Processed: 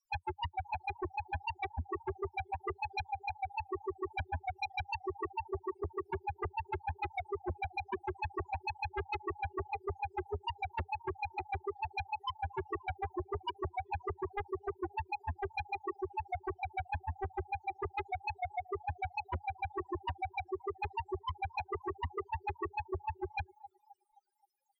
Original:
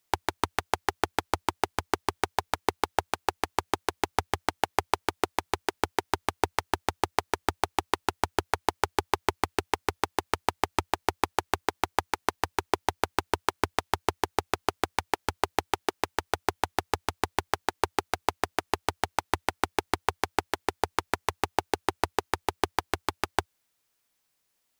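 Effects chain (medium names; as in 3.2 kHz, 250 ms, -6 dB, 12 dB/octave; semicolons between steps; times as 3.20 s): loudest bins only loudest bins 2; band-passed feedback delay 263 ms, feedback 45%, band-pass 910 Hz, level -22 dB; sine folder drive 10 dB, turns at -26.5 dBFS; trim -4 dB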